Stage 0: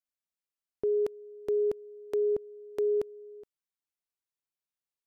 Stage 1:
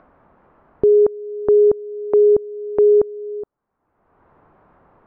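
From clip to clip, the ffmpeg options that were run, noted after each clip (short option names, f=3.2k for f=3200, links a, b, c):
-filter_complex "[0:a]lowpass=f=1.2k:w=0.5412,lowpass=f=1.2k:w=1.3066,asplit=2[a][b];[b]acompressor=mode=upward:threshold=-31dB:ratio=2.5,volume=0dB[c];[a][c]amix=inputs=2:normalize=0,volume=9dB"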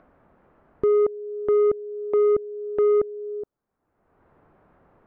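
-af "equalizer=f=1k:w=1.6:g=-5,asoftclip=type=tanh:threshold=-11.5dB,volume=-3dB"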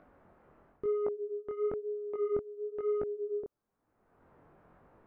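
-af "areverse,acompressor=threshold=-29dB:ratio=6,areverse,flanger=delay=18.5:depth=7:speed=1"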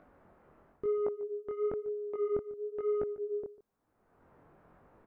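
-af "aecho=1:1:146:0.126"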